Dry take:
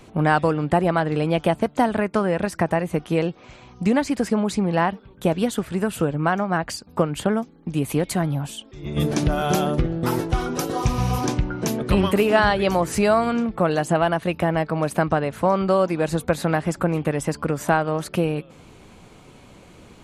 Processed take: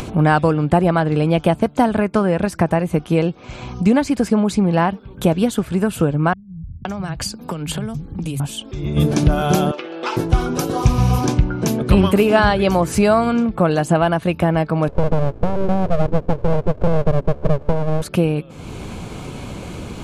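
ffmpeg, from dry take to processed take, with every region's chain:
-filter_complex "[0:a]asettb=1/sr,asplit=3[s0][s1][s2];[s0]atrim=end=6.334[s3];[s1]atrim=start=6.33:end=8.4,asetpts=PTS-STARTPTS,afade=t=in:d=0.004:c=qsin,afade=t=out:st=2.066:d=0.004:c=qsin,acrossover=split=130|3000[s4][s5][s6];[s5]acompressor=threshold=0.0224:ratio=6:attack=3.2:release=140:knee=2.83:detection=peak[s7];[s4][s7][s6]amix=inputs=3:normalize=0,acrossover=split=150[s8][s9];[s9]adelay=520[s10];[s8][s10]amix=inputs=2:normalize=0,atrim=end_sample=91287[s11];[s2]atrim=start=8.396[s12];[s3][s11]acrossfade=d=0.004:c1=hsin:c2=qsin[s13];[s13][s12]acrossfade=d=0.004:c1=qsin:c2=hsin,asettb=1/sr,asplit=3[s14][s15][s16];[s14]atrim=end=9.714[s17];[s15]atrim=start=9.71:end=10.17,asetpts=PTS-STARTPTS,afade=t=in:d=0.004:c=qsin,afade=t=out:st=0.456:d=0.004:c=qsin,highpass=f=460:w=0.5412,highpass=f=460:w=1.3066,equalizer=f=470:t=q:w=4:g=-5,equalizer=f=680:t=q:w=4:g=-6,equalizer=f=2700:t=q:w=4:g=9,lowpass=f=6000:w=0.5412,lowpass=f=6000:w=1.3066,bandreject=f=2800:w=30[s18];[s16]atrim=start=10.166[s19];[s17][s18]acrossfade=d=0.004:c1=hsin:c2=qsin[s20];[s20][s19]acrossfade=d=0.004:c1=qsin:c2=hsin,asettb=1/sr,asplit=3[s21][s22][s23];[s21]atrim=end=14.884[s24];[s22]atrim=start=14.88:end=18.02,asetpts=PTS-STARTPTS,afade=t=in:d=0.004:c=qsin,afade=t=out:st=3.136:d=0.004:c=qsin,lowpass=f=300:t=q:w=3.6,aeval=exprs='abs(val(0))':c=same[s25];[s23]atrim=start=18.016[s26];[s24][s25]acrossfade=d=0.004:c1=hsin:c2=qsin[s27];[s27][s26]acrossfade=d=0.004:c1=qsin:c2=hsin,equalizer=f=72:w=0.32:g=5.5,bandreject=f=1900:w=12,acompressor=mode=upward:threshold=0.0891:ratio=2.5,volume=1.33"

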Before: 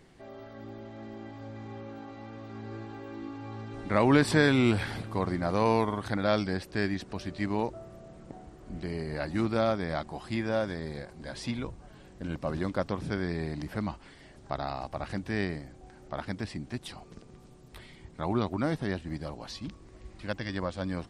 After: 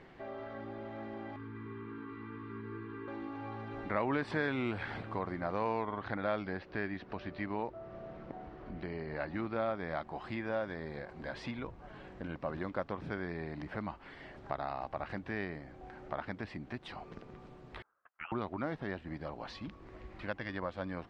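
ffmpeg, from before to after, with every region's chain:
-filter_complex "[0:a]asettb=1/sr,asplit=3[s0][s1][s2];[s0]atrim=end=1.364[s3];[s1]atrim=start=1.36:end=3.08,asetpts=PTS-STARTPTS,afade=t=in:d=0.004:c=qsin,afade=t=out:st=1.716:d=0.004:c=qsin,asuperstop=centerf=660:order=20:qfactor=1.7,equalizer=f=7300:w=0.62:g=-14[s4];[s2]atrim=start=3.076[s5];[s3][s4]acrossfade=d=0.004:c1=hsin:c2=qsin[s6];[s6][s5]acrossfade=d=0.004:c1=qsin:c2=hsin,asettb=1/sr,asplit=3[s7][s8][s9];[s7]atrim=end=5.834[s10];[s8]atrim=start=5.83:end=9.8,asetpts=PTS-STARTPTS,afade=t=in:d=0.004:c=qsin,afade=t=out:st=3.966:d=0.004:c=qsin,lowpass=f=5700:w=0.5412,lowpass=f=5700:w=1.3066,acrossover=split=4500[s11][s12];[s12]acompressor=threshold=0.002:ratio=4:attack=1:release=60[s13];[s11][s13]amix=inputs=2:normalize=0[s14];[s9]atrim=start=9.796[s15];[s10][s14]acrossfade=d=0.004:c1=hsin:c2=qsin[s16];[s16][s15]acrossfade=d=0.004:c1=qsin:c2=hsin,asettb=1/sr,asplit=3[s17][s18][s19];[s17]atrim=end=17.824[s20];[s18]atrim=start=17.82:end=18.32,asetpts=PTS-STARTPTS,afade=t=in:d=0.004:c=qsin,afade=t=out:st=0.496:d=0.004:c=qsin,agate=range=0.0316:threshold=0.00562:ratio=16:release=100:detection=peak,highpass=f=2500:t=q:w=2.2,lowpass=f=3000:t=q:w=0.5098,lowpass=f=3000:t=q:w=0.6013,lowpass=f=3000:t=q:w=0.9,lowpass=f=3000:t=q:w=2.563,afreqshift=-3500[s21];[s19]atrim=start=18.316[s22];[s20][s21]acrossfade=d=0.004:c1=hsin:c2=qsin[s23];[s23][s22]acrossfade=d=0.004:c1=qsin:c2=hsin,acompressor=threshold=0.00631:ratio=2,lowpass=2300,lowshelf=f=370:g=-9,volume=2.24"

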